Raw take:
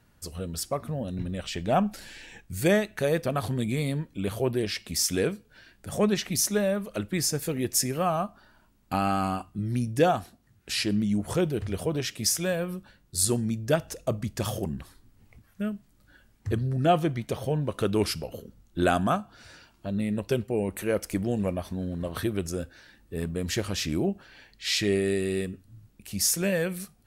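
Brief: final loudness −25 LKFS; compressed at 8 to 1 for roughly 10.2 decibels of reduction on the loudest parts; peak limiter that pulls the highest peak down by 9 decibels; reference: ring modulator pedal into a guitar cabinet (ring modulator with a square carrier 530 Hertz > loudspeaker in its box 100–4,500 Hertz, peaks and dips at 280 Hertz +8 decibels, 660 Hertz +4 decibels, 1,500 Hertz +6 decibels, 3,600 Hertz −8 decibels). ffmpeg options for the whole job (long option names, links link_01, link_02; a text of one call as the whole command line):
ffmpeg -i in.wav -af "acompressor=threshold=-26dB:ratio=8,alimiter=level_in=0.5dB:limit=-24dB:level=0:latency=1,volume=-0.5dB,aeval=exprs='val(0)*sgn(sin(2*PI*530*n/s))':channel_layout=same,highpass=100,equalizer=frequency=280:width_type=q:width=4:gain=8,equalizer=frequency=660:width_type=q:width=4:gain=4,equalizer=frequency=1500:width_type=q:width=4:gain=6,equalizer=frequency=3600:width_type=q:width=4:gain=-8,lowpass=frequency=4500:width=0.5412,lowpass=frequency=4500:width=1.3066,volume=7.5dB" out.wav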